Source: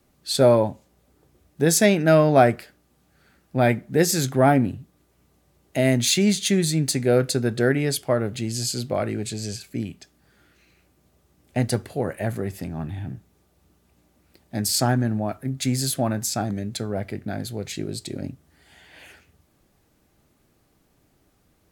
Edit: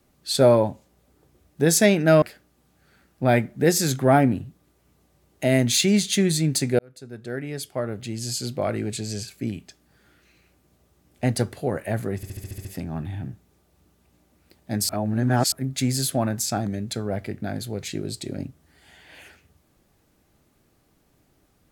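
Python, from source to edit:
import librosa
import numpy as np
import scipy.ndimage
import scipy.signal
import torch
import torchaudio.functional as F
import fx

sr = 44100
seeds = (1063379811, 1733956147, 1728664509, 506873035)

y = fx.edit(x, sr, fx.cut(start_s=2.22, length_s=0.33),
    fx.fade_in_span(start_s=7.12, length_s=2.02),
    fx.stutter(start_s=12.49, slice_s=0.07, count=8),
    fx.reverse_span(start_s=14.73, length_s=0.63), tone=tone)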